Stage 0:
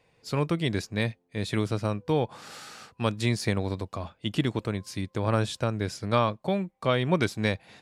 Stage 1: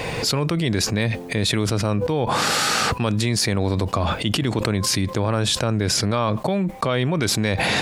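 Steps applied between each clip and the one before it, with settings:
envelope flattener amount 100%
level −1.5 dB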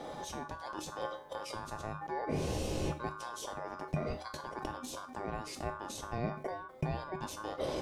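tuned comb filter 230 Hz, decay 0.35 s, harmonics all, mix 80%
ring modulation 1,300 Hz
drawn EQ curve 560 Hz 0 dB, 1,600 Hz −22 dB, 4,900 Hz −16 dB
level +6 dB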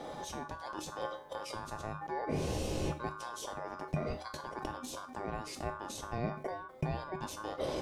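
no processing that can be heard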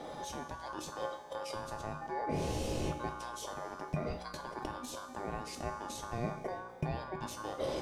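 tuned comb filter 60 Hz, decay 1.9 s, harmonics all, mix 70%
level +8.5 dB

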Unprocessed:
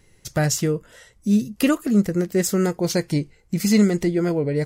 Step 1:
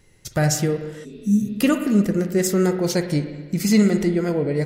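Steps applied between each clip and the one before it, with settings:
spring reverb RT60 1.4 s, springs 46/54 ms, chirp 20 ms, DRR 7 dB
healed spectral selection 0:01.07–0:01.48, 240–5,600 Hz after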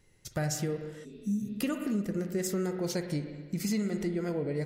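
downward compressor, threshold −18 dBFS, peak gain reduction 7.5 dB
level −9 dB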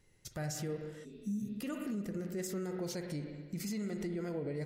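brickwall limiter −27 dBFS, peak gain reduction 7.5 dB
level −3.5 dB

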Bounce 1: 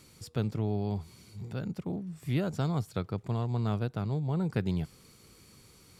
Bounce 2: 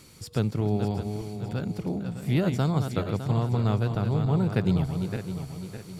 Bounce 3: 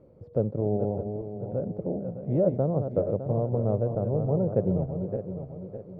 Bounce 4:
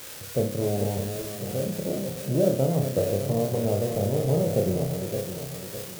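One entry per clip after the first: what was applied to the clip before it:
feedback delay that plays each chunk backwards 304 ms, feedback 63%, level −7 dB; level +5 dB
low-pass with resonance 560 Hz, resonance Q 6; level −4 dB
spike at every zero crossing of −24 dBFS; on a send: flutter between parallel walls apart 5.2 metres, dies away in 0.37 s

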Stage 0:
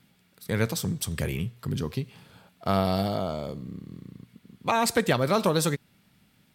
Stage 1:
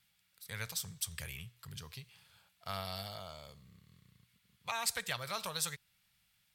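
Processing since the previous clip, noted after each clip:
guitar amp tone stack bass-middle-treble 10-0-10
level −4.5 dB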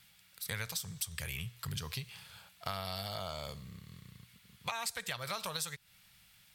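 downward compressor 8 to 1, threshold −46 dBFS, peak gain reduction 17 dB
level +11 dB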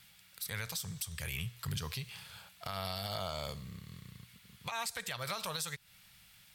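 brickwall limiter −28.5 dBFS, peak gain reduction 9 dB
level +2.5 dB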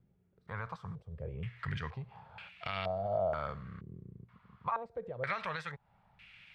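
low-pass on a step sequencer 2.1 Hz 370–2,500 Hz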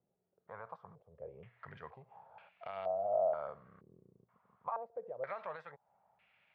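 resonant band-pass 650 Hz, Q 1.9
level +1 dB

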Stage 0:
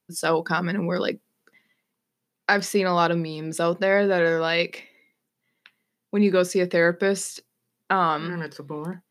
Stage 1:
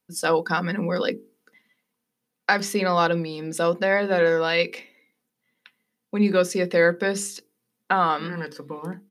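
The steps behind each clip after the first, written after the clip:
mains-hum notches 50/100/150/200/250/300/350/400/450 Hz
comb filter 4 ms, depth 33%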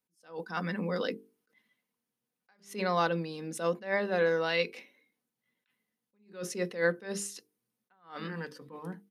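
level that may rise only so fast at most 170 dB per second
level −7.5 dB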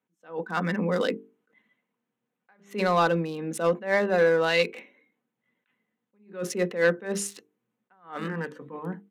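adaptive Wiener filter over 9 samples
high-pass filter 120 Hz
soft clipping −19 dBFS, distortion −20 dB
level +7.5 dB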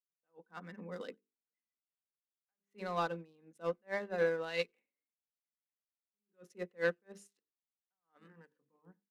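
far-end echo of a speakerphone 90 ms, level −21 dB
expander for the loud parts 2.5 to 1, over −37 dBFS
level −9 dB

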